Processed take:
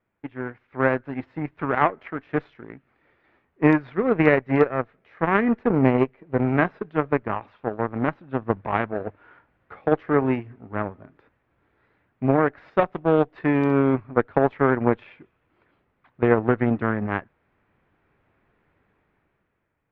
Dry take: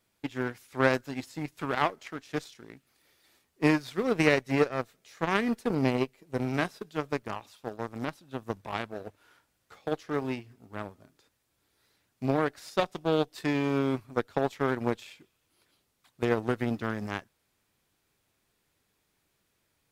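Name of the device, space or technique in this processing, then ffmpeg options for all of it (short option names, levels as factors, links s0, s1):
action camera in a waterproof case: -af "lowpass=f=2100:w=0.5412,lowpass=f=2100:w=1.3066,dynaudnorm=f=160:g=11:m=3.76" -ar 44100 -c:a aac -b:a 128k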